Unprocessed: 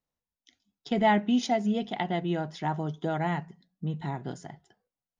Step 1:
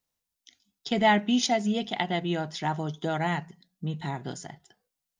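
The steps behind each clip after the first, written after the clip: treble shelf 2.3 kHz +10.5 dB; endings held to a fixed fall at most 460 dB/s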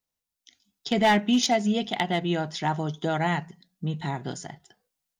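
hard clipper -17.5 dBFS, distortion -17 dB; level rider gain up to 6 dB; trim -3.5 dB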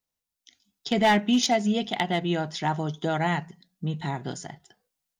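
no audible change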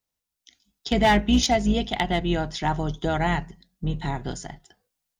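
octave divider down 2 oct, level -4 dB; trim +1.5 dB

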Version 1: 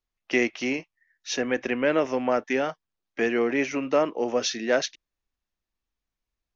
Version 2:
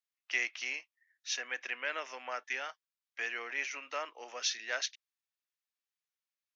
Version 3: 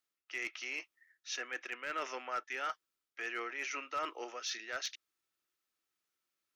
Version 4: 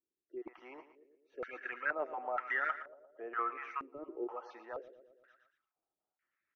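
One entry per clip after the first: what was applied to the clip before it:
high-pass 1.4 kHz 12 dB/octave; trim -4.5 dB
reverse; compression 5:1, threshold -44 dBFS, peak gain reduction 15.5 dB; reverse; small resonant body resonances 340/1300 Hz, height 10 dB, ringing for 25 ms; hard clipper -35 dBFS, distortion -23 dB; trim +5.5 dB
random holes in the spectrogram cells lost 25%; on a send: feedback delay 116 ms, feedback 58%, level -13 dB; on the sum: step-sequenced low-pass 2.1 Hz 370–1900 Hz; trim -1 dB

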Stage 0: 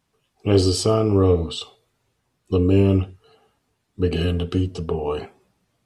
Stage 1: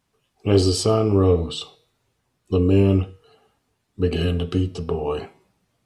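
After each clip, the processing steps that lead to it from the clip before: de-hum 159.2 Hz, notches 37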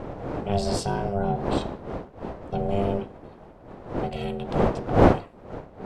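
wind noise 400 Hz -19 dBFS; ring modulator 300 Hz; trim -6 dB

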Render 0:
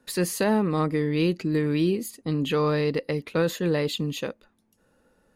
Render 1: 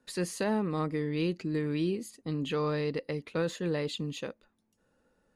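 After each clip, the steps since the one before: low-pass 10 kHz 24 dB/octave; trim -7 dB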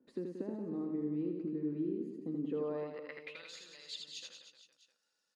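compression 6:1, threshold -39 dBFS, peak gain reduction 14 dB; band-pass sweep 300 Hz -> 5 kHz, 2.43–3.55 s; on a send: reverse bouncing-ball echo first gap 80 ms, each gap 1.25×, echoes 5; on the sum: trim +6 dB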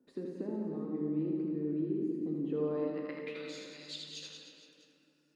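reverberation RT60 2.9 s, pre-delay 7 ms, DRR 1.5 dB

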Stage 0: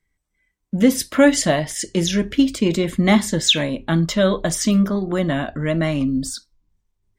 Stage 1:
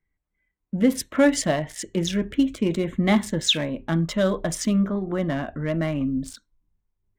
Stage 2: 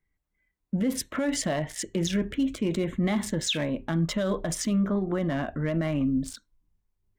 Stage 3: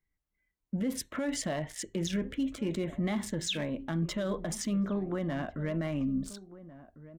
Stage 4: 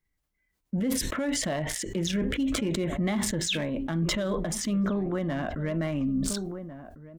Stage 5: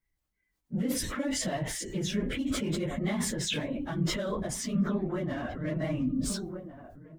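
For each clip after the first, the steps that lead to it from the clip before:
local Wiener filter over 9 samples; trim -4.5 dB
peak limiter -18.5 dBFS, peak gain reduction 12 dB
echo from a far wall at 240 m, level -16 dB; trim -5.5 dB
decay stretcher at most 28 dB/s; trim +3 dB
phase randomisation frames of 50 ms; trim -3 dB

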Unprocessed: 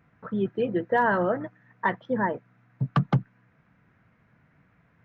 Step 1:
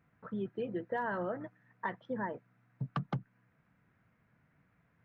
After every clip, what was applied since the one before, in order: compression 2.5:1, threshold -25 dBFS, peak gain reduction 6 dB; trim -8.5 dB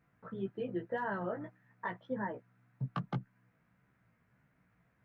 chorus 1.8 Hz, delay 15 ms, depth 2.3 ms; trim +2 dB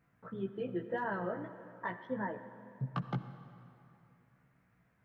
reverberation RT60 2.8 s, pre-delay 52 ms, DRR 11 dB

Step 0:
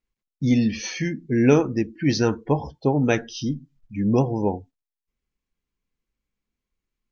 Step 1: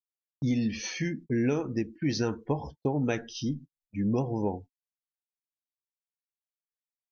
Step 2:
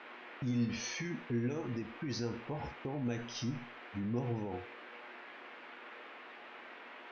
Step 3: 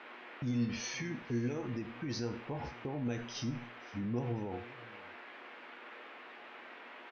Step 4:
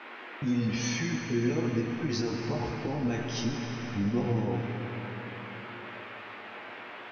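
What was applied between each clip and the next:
gate -37 dBFS, range -39 dB; compression 6:1, threshold -19 dBFS, peak gain reduction 8.5 dB; trim -4.5 dB
band noise 250–2500 Hz -48 dBFS; peak limiter -27 dBFS, peak gain reduction 10.5 dB; feedback comb 120 Hz, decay 0.44 s, harmonics all, mix 70%; trim +4.5 dB
delay 517 ms -20.5 dB
chorus 1.1 Hz, delay 17.5 ms, depth 2.4 ms; reverberation RT60 4.6 s, pre-delay 65 ms, DRR 3.5 dB; trim +9 dB

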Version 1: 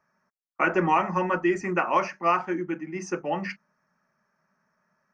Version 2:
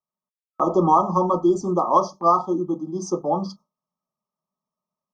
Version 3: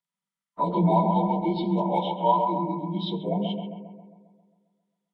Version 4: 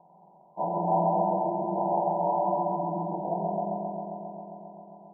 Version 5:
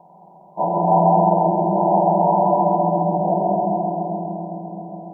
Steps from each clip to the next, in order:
FFT band-reject 1.3–3.2 kHz; gate with hold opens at -39 dBFS; level rider gain up to 6 dB
frequency axis rescaled in octaves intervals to 85%; graphic EQ with 31 bands 160 Hz +9 dB, 315 Hz -11 dB, 500 Hz -8 dB, 800 Hz -10 dB, 1.25 kHz +12 dB, 2 kHz +8 dB, 3.15 kHz +6 dB; bucket-brigade echo 134 ms, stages 2048, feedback 58%, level -5 dB
spectral levelling over time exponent 0.4; four-pole ladder low-pass 820 Hz, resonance 75%; reverberation RT60 1.0 s, pre-delay 92 ms, DRR 3 dB; trim -4.5 dB
bucket-brigade echo 210 ms, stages 1024, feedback 82%, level -6.5 dB; trim +9 dB

